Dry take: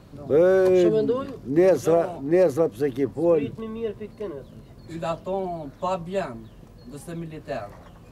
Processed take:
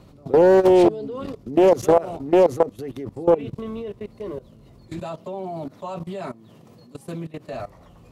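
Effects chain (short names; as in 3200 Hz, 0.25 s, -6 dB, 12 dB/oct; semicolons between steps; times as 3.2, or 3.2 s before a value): 4.99–7.53 HPF 120 Hz 24 dB/oct; level quantiser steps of 18 dB; bell 1600 Hz -8.5 dB 0.2 oct; Doppler distortion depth 0.37 ms; gain +5.5 dB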